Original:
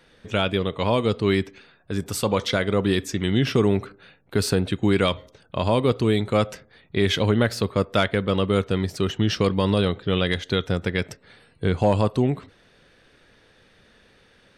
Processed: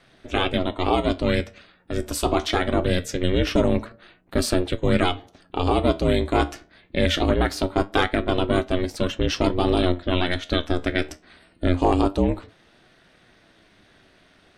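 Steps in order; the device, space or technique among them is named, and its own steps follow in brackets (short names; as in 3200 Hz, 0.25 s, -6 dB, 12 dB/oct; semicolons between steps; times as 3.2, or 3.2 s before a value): alien voice (ring modulator 180 Hz; flange 0.23 Hz, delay 7.6 ms, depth 6.3 ms, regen +70%); gain +7.5 dB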